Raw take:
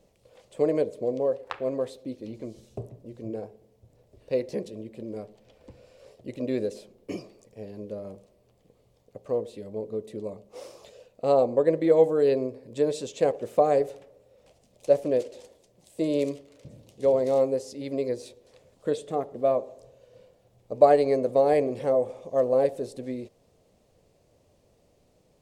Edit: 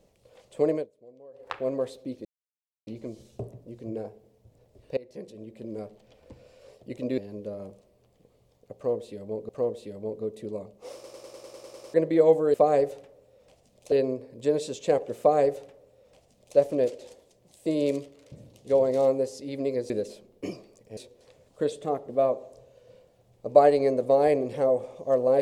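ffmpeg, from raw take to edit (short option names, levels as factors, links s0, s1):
-filter_complex "[0:a]asplit=21[s0][s1][s2][s3][s4][s5][s6][s7][s8][s9][s10][s11][s12][s13][s14][s15][s16][s17][s18][s19][s20];[s0]atrim=end=0.87,asetpts=PTS-STARTPTS,afade=t=out:st=0.71:d=0.16:silence=0.0668344[s21];[s1]atrim=start=0.87:end=1.33,asetpts=PTS-STARTPTS,volume=0.0668[s22];[s2]atrim=start=1.33:end=2.25,asetpts=PTS-STARTPTS,afade=t=in:d=0.16:silence=0.0668344,afade=t=out:st=0.916:d=0.004:c=hsin,apad=pad_dur=0.62[s23];[s3]atrim=start=2.25:end=4.35,asetpts=PTS-STARTPTS,afade=t=in:d=0.004:c=hsin,afade=t=out:st=2.096:d=0.004:c=hsin:silence=0.0841395[s24];[s4]atrim=start=4.35:end=6.562,asetpts=PTS-STARTPTS,afade=t=in:d=0.77:silence=0.0841395[s25];[s5]atrim=start=7.628:end=9.942[s26];[s6]atrim=start=9.198:end=10.752[s27];[s7]atrim=start=10.648:end=10.752[s28];[s8]atrim=start=10.648:end=10.752[s29];[s9]atrim=start=10.648:end=10.752[s30];[s10]atrim=start=10.648:end=10.752[s31];[s11]atrim=start=10.648:end=10.752[s32];[s12]atrim=start=10.648:end=10.752[s33];[s13]atrim=start=10.648:end=10.752[s34];[s14]atrim=start=10.648:end=10.752[s35];[s15]atrim=start=10.648:end=10.752[s36];[s16]atrim=start=11.648:end=12.252[s37];[s17]atrim=start=13.518:end=14.902[s38];[s18]atrim=start=12.248:end=18.232[s39];[s19]atrim=start=6.558:end=7.632[s40];[s20]atrim=start=18.228[s41];[s21][s22][s23][s24][s25]concat=n=5:v=0:a=1[s42];[s42][s26]acrossfade=d=0.004:c1=hsin:c2=hsin[s43];[s43][s27]acrossfade=d=0.004:c1=hsin:c2=hsin[s44];[s44][s28]acrossfade=d=0.004:c1=hsin:c2=hsin[s45];[s45][s29]acrossfade=d=0.004:c1=hsin:c2=hsin[s46];[s46][s30]acrossfade=d=0.004:c1=hsin:c2=hsin[s47];[s47][s31]acrossfade=d=0.004:c1=hsin:c2=hsin[s48];[s48][s32]acrossfade=d=0.004:c1=hsin:c2=hsin[s49];[s49][s33]acrossfade=d=0.004:c1=hsin:c2=hsin[s50];[s50][s34]acrossfade=d=0.004:c1=hsin:c2=hsin[s51];[s51][s35]acrossfade=d=0.004:c1=hsin:c2=hsin[s52];[s52][s36]acrossfade=d=0.004:c1=hsin:c2=hsin[s53];[s53][s37]acrossfade=d=0.004:c1=hsin:c2=hsin[s54];[s54][s38]acrossfade=d=0.004:c1=hsin:c2=hsin[s55];[s55][s39]acrossfade=d=0.004:c1=hsin:c2=hsin[s56];[s56][s40]acrossfade=d=0.004:c1=hsin:c2=hsin[s57];[s57][s41]acrossfade=d=0.004:c1=hsin:c2=hsin"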